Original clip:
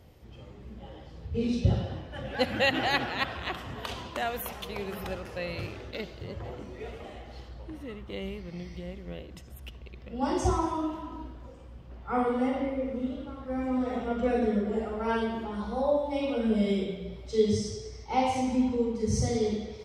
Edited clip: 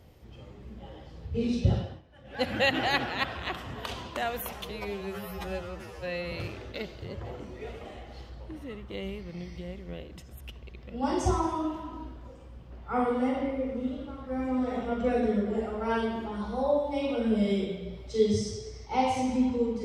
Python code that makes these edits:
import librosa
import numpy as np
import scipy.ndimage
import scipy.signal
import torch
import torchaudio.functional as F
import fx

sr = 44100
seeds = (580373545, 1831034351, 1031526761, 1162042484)

y = fx.edit(x, sr, fx.fade_down_up(start_s=1.77, length_s=0.72, db=-15.5, fade_s=0.25),
    fx.stretch_span(start_s=4.7, length_s=0.81, factor=2.0), tone=tone)